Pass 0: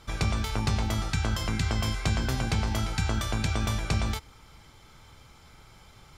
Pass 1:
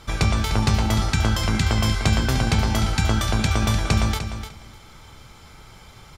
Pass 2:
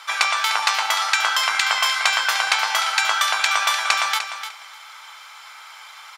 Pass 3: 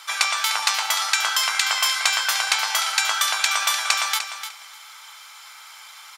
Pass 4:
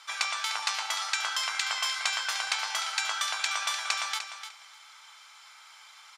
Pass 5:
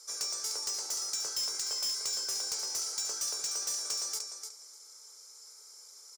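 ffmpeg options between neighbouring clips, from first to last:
-af "aecho=1:1:300|600|900:0.316|0.0569|0.0102,volume=7dB"
-filter_complex "[0:a]highpass=f=940:w=0.5412,highpass=f=940:w=1.3066,acrossover=split=3700[a][b];[a]acontrast=31[c];[c][b]amix=inputs=2:normalize=0,volume=5dB"
-af "highshelf=f=4.6k:g=12,volume=-5dB"
-af "lowpass=8.2k,volume=-8.5dB"
-af "firequalizer=gain_entry='entry(150,0);entry(420,14);entry(730,-15);entry(2000,-22);entry(3100,-27);entry(5200,5)':delay=0.05:min_phase=1,asoftclip=type=tanh:threshold=-30.5dB,volume=2dB"

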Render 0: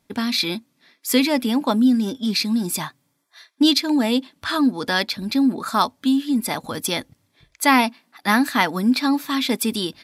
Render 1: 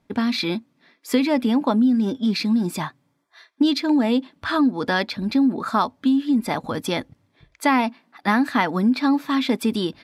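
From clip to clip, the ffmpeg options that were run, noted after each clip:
-af "lowpass=f=1.7k:p=1,acompressor=threshold=-18dB:ratio=4,volume=3dB"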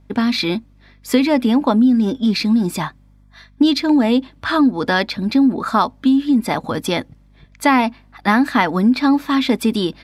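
-af "aeval=exprs='val(0)+0.00224*(sin(2*PI*50*n/s)+sin(2*PI*2*50*n/s)/2+sin(2*PI*3*50*n/s)/3+sin(2*PI*4*50*n/s)/4+sin(2*PI*5*50*n/s)/5)':c=same,volume=4.5dB"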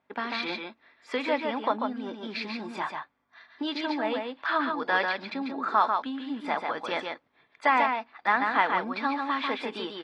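-af "highpass=650,lowpass=2.5k,aecho=1:1:143:0.596,volume=-5.5dB" -ar 24000 -c:a aac -b:a 32k

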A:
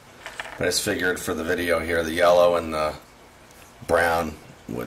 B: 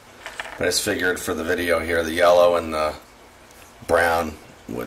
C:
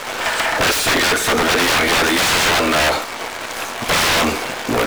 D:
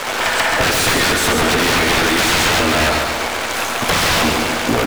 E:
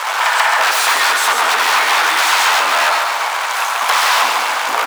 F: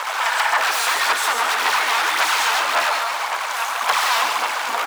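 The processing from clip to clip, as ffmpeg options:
-af "equalizer=f=150:t=o:w=0.45:g=-10,volume=2dB"
-filter_complex "[0:a]aeval=exprs='(mod(9.44*val(0)+1,2)-1)/9.44':c=same,acrusher=bits=8:dc=4:mix=0:aa=0.000001,asplit=2[a][b];[b]highpass=f=720:p=1,volume=23dB,asoftclip=type=tanh:threshold=-19dB[c];[a][c]amix=inputs=2:normalize=0,lowpass=f=3.9k:p=1,volume=-6dB,volume=9dB"
-filter_complex "[0:a]acrossover=split=200[a][b];[b]acompressor=threshold=-20dB:ratio=4[c];[a][c]amix=inputs=2:normalize=0,aecho=1:1:138|276|414|552|690|828:0.562|0.287|0.146|0.0746|0.038|0.0194,volume=4.5dB"
-af "highpass=f=950:t=q:w=2.3"
-af "aphaser=in_gain=1:out_gain=1:delay=4.4:decay=0.41:speed=1.8:type=sinusoidal,volume=-6.5dB"

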